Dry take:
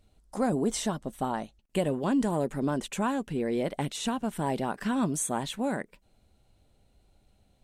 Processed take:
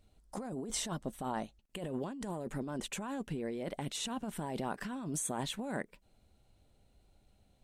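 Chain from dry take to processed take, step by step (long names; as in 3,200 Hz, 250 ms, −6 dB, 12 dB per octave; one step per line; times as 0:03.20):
compressor whose output falls as the input rises −32 dBFS, ratio −1
level −6 dB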